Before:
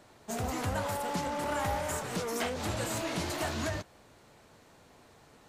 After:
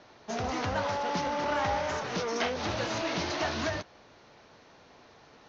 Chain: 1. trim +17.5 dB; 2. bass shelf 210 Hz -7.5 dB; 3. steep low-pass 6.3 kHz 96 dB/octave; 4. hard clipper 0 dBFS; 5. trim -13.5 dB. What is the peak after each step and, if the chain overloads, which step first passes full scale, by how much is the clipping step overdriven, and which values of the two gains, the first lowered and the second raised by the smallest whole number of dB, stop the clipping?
-4.0 dBFS, -4.5 dBFS, -3.0 dBFS, -3.0 dBFS, -16.5 dBFS; nothing clips

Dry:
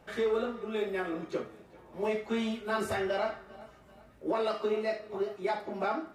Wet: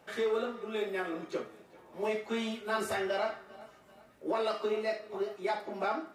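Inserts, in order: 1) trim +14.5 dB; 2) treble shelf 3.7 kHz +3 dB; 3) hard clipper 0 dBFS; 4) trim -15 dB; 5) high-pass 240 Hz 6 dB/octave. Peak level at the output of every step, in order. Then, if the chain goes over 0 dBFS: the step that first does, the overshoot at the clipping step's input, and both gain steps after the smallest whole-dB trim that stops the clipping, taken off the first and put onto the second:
-4.0 dBFS, -3.5 dBFS, -3.5 dBFS, -18.5 dBFS, -19.0 dBFS; nothing clips

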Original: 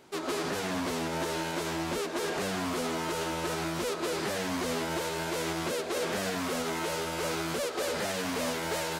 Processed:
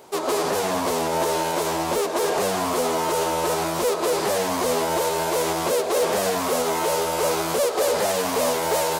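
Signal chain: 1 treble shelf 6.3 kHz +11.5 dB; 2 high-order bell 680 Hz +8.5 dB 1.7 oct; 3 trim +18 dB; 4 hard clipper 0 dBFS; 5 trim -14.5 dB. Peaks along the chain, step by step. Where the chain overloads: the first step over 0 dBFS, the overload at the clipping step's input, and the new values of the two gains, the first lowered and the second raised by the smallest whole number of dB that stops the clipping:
-15.5 dBFS, -12.0 dBFS, +6.0 dBFS, 0.0 dBFS, -14.5 dBFS; step 3, 6.0 dB; step 3 +12 dB, step 5 -8.5 dB

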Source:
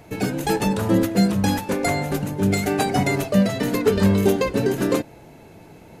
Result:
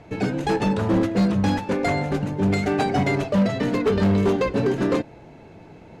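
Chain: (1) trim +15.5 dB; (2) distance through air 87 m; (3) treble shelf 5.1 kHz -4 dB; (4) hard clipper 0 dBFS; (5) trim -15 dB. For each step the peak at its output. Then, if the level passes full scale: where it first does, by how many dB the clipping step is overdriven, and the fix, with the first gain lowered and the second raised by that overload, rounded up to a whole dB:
+10.5 dBFS, +10.0 dBFS, +10.0 dBFS, 0.0 dBFS, -15.0 dBFS; step 1, 10.0 dB; step 1 +5.5 dB, step 5 -5 dB

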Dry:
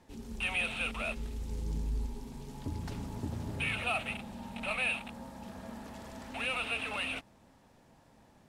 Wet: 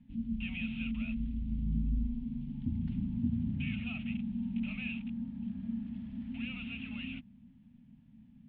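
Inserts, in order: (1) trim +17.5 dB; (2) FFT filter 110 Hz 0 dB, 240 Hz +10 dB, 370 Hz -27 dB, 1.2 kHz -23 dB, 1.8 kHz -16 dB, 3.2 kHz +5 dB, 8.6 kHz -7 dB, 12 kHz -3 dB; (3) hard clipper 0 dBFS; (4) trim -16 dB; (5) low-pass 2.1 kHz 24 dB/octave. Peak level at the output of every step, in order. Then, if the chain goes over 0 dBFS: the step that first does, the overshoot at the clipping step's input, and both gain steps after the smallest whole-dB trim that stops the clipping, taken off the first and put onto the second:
-3.0 dBFS, -4.5 dBFS, -4.5 dBFS, -20.5 dBFS, -21.0 dBFS; nothing clips

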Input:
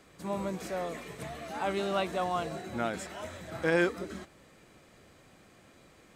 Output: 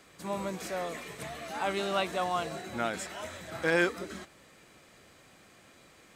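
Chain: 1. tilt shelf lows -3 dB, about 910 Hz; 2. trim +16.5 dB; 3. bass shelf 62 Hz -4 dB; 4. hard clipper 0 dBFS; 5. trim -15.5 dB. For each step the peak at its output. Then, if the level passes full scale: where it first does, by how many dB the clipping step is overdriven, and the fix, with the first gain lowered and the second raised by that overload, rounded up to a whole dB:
-12.5 dBFS, +4.0 dBFS, +4.0 dBFS, 0.0 dBFS, -15.5 dBFS; step 2, 4.0 dB; step 2 +12.5 dB, step 5 -11.5 dB

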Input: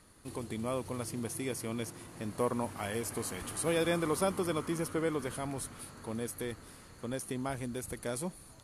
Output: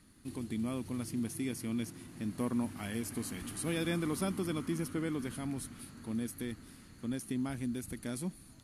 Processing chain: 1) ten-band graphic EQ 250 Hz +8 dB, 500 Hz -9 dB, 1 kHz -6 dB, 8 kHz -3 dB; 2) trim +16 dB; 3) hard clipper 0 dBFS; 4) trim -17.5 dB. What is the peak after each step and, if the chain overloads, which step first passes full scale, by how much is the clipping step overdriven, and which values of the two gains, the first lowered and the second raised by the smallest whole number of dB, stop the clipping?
-20.5 dBFS, -4.5 dBFS, -4.5 dBFS, -22.0 dBFS; nothing clips

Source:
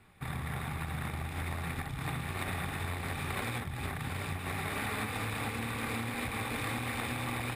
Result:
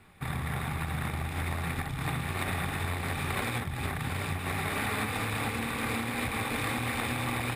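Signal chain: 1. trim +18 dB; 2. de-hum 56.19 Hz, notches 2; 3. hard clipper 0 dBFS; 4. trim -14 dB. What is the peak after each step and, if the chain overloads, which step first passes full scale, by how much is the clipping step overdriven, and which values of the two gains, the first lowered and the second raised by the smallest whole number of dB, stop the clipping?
-4.0 dBFS, -4.0 dBFS, -4.0 dBFS, -18.0 dBFS; nothing clips

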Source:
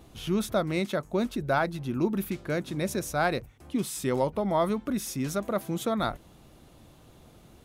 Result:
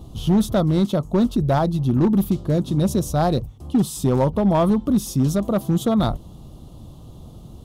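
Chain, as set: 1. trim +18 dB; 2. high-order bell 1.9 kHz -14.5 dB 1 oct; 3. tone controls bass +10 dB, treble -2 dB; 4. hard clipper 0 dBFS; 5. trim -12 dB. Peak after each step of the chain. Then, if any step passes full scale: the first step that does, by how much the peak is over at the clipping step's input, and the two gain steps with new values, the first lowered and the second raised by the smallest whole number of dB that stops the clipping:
+5.5 dBFS, +4.0 dBFS, +7.0 dBFS, 0.0 dBFS, -12.0 dBFS; step 1, 7.0 dB; step 1 +11 dB, step 5 -5 dB

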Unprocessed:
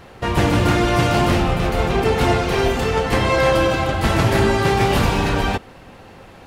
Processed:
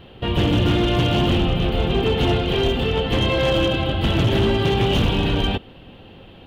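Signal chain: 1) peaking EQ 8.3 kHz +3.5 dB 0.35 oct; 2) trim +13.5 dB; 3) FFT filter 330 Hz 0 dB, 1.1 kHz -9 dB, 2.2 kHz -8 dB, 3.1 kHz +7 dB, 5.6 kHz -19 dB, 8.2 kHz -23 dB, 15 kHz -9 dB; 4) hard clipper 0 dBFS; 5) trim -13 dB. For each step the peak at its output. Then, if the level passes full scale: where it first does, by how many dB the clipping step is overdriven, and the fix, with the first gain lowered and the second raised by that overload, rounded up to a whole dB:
-4.5 dBFS, +9.0 dBFS, +8.0 dBFS, 0.0 dBFS, -13.0 dBFS; step 2, 8.0 dB; step 2 +5.5 dB, step 5 -5 dB

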